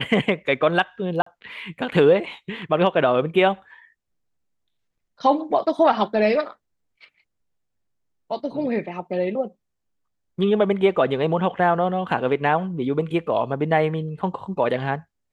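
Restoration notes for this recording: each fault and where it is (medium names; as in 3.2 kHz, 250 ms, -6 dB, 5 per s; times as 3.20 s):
1.22–1.26 s: dropout 44 ms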